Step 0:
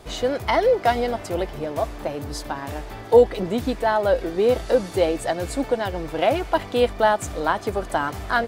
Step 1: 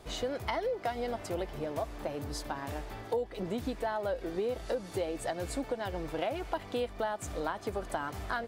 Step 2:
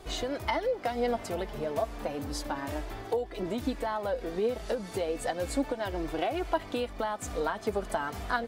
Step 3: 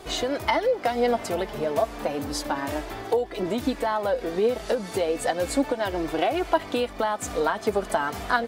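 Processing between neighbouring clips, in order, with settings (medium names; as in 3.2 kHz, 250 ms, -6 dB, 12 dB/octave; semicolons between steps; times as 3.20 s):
compression 6:1, threshold -23 dBFS, peak gain reduction 14 dB; trim -7 dB
flange 0.32 Hz, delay 2.6 ms, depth 2.2 ms, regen +40%; trim +7 dB
bass shelf 94 Hz -10.5 dB; trim +7 dB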